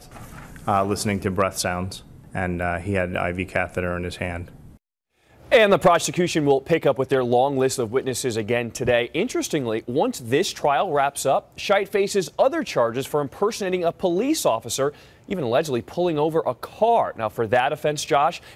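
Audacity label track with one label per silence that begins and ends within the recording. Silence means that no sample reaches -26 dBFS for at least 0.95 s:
4.420000	5.520000	silence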